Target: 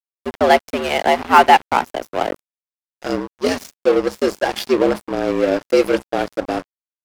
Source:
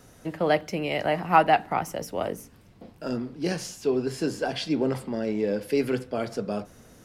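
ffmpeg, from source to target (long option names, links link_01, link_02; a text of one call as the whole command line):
ffmpeg -i in.wav -af "afreqshift=78,aeval=exprs='sgn(val(0))*max(abs(val(0))-0.0224,0)':channel_layout=same,apsyclip=13.5dB,volume=-1.5dB" out.wav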